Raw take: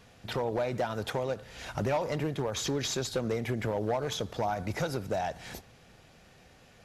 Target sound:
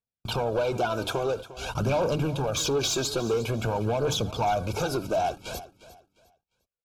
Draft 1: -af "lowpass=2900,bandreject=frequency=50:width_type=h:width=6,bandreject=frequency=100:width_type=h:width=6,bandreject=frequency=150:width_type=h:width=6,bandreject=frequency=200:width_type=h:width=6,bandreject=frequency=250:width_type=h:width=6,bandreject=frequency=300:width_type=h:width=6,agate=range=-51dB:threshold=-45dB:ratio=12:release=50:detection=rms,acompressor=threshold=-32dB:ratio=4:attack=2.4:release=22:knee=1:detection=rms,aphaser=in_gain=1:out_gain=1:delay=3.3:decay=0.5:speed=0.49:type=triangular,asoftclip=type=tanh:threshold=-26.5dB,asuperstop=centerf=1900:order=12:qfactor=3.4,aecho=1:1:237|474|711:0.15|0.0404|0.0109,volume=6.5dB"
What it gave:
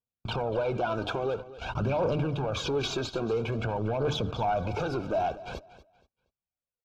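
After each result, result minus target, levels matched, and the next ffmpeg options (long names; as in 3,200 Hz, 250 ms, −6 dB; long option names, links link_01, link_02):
echo 116 ms early; downward compressor: peak gain reduction +6.5 dB; 4,000 Hz band −2.5 dB
-af "lowpass=2900,bandreject=frequency=50:width_type=h:width=6,bandreject=frequency=100:width_type=h:width=6,bandreject=frequency=150:width_type=h:width=6,bandreject=frequency=200:width_type=h:width=6,bandreject=frequency=250:width_type=h:width=6,bandreject=frequency=300:width_type=h:width=6,agate=range=-51dB:threshold=-45dB:ratio=12:release=50:detection=rms,acompressor=threshold=-32dB:ratio=4:attack=2.4:release=22:knee=1:detection=rms,aphaser=in_gain=1:out_gain=1:delay=3.3:decay=0.5:speed=0.49:type=triangular,asoftclip=type=tanh:threshold=-26.5dB,asuperstop=centerf=1900:order=12:qfactor=3.4,aecho=1:1:353|706|1059:0.15|0.0404|0.0109,volume=6.5dB"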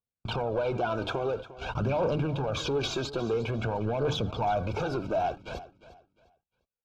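downward compressor: peak gain reduction +6.5 dB; 4,000 Hz band −2.5 dB
-af "lowpass=2900,bandreject=frequency=50:width_type=h:width=6,bandreject=frequency=100:width_type=h:width=6,bandreject=frequency=150:width_type=h:width=6,bandreject=frequency=200:width_type=h:width=6,bandreject=frequency=250:width_type=h:width=6,bandreject=frequency=300:width_type=h:width=6,agate=range=-51dB:threshold=-45dB:ratio=12:release=50:detection=rms,aphaser=in_gain=1:out_gain=1:delay=3.3:decay=0.5:speed=0.49:type=triangular,asoftclip=type=tanh:threshold=-26.5dB,asuperstop=centerf=1900:order=12:qfactor=3.4,aecho=1:1:353|706|1059:0.15|0.0404|0.0109,volume=6.5dB"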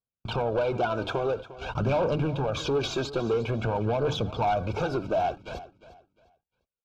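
4,000 Hz band −4.5 dB
-af "bandreject=frequency=50:width_type=h:width=6,bandreject=frequency=100:width_type=h:width=6,bandreject=frequency=150:width_type=h:width=6,bandreject=frequency=200:width_type=h:width=6,bandreject=frequency=250:width_type=h:width=6,bandreject=frequency=300:width_type=h:width=6,agate=range=-51dB:threshold=-45dB:ratio=12:release=50:detection=rms,aphaser=in_gain=1:out_gain=1:delay=3.3:decay=0.5:speed=0.49:type=triangular,asoftclip=type=tanh:threshold=-26.5dB,asuperstop=centerf=1900:order=12:qfactor=3.4,aecho=1:1:353|706|1059:0.15|0.0404|0.0109,volume=6.5dB"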